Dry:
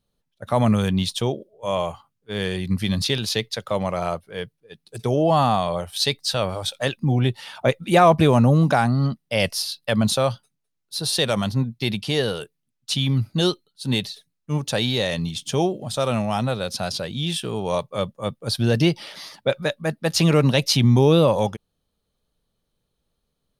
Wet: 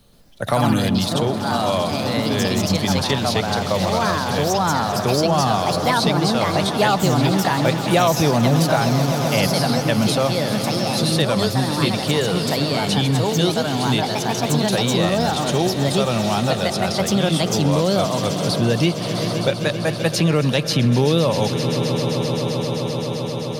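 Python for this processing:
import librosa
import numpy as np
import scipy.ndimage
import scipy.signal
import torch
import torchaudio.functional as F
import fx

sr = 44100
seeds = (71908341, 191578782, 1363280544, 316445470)

y = fx.echo_pitch(x, sr, ms=128, semitones=3, count=2, db_per_echo=-3.0)
y = fx.echo_swell(y, sr, ms=130, loudest=5, wet_db=-16.5)
y = fx.band_squash(y, sr, depth_pct=70)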